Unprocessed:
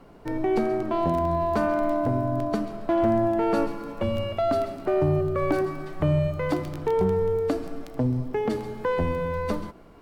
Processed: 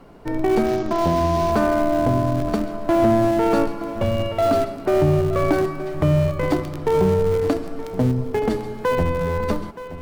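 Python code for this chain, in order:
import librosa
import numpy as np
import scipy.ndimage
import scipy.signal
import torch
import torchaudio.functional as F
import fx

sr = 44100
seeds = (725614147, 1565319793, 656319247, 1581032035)

p1 = fx.cvsd(x, sr, bps=32000, at=(0.66, 1.52))
p2 = fx.schmitt(p1, sr, flips_db=-22.0)
p3 = p1 + (p2 * 10.0 ** (-10.0 / 20.0))
p4 = p3 + 10.0 ** (-14.5 / 20.0) * np.pad(p3, (int(923 * sr / 1000.0), 0))[:len(p3)]
y = p4 * 10.0 ** (4.0 / 20.0)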